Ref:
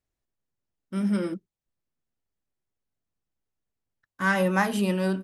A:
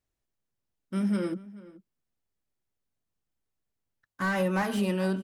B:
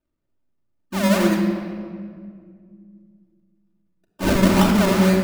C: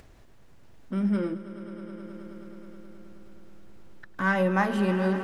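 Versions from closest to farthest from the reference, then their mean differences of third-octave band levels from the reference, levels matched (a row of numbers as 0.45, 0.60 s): A, C, B; 2.0, 4.5, 10.5 dB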